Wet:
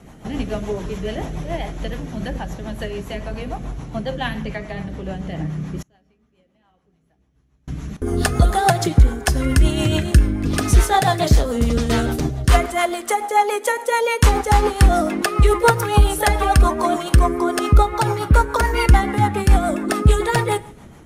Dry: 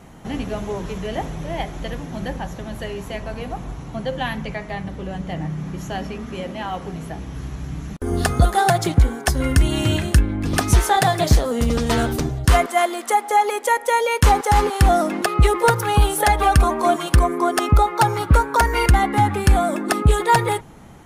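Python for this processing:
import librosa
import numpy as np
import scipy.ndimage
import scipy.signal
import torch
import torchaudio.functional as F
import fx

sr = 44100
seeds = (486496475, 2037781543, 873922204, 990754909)

y = fx.rev_double_slope(x, sr, seeds[0], early_s=0.61, late_s=1.8, knee_db=-18, drr_db=13.5)
y = fx.rotary(y, sr, hz=7.0)
y = fx.gate_flip(y, sr, shuts_db=-33.0, range_db=-33, at=(5.82, 7.68))
y = y * librosa.db_to_amplitude(2.5)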